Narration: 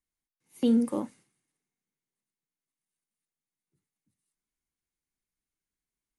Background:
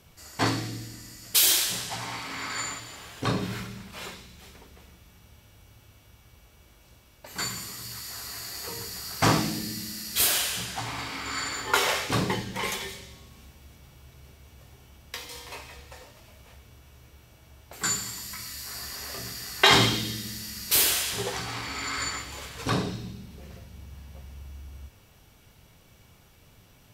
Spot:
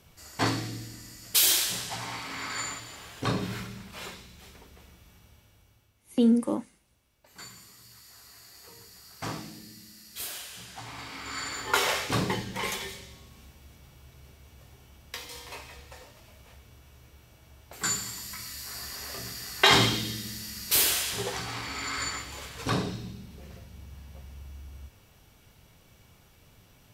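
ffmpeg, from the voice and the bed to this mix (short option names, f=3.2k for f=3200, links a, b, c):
-filter_complex "[0:a]adelay=5550,volume=2dB[a];[1:a]volume=11dB,afade=t=out:st=5.12:d=0.82:silence=0.237137,afade=t=in:st=10.49:d=1.3:silence=0.237137[b];[a][b]amix=inputs=2:normalize=0"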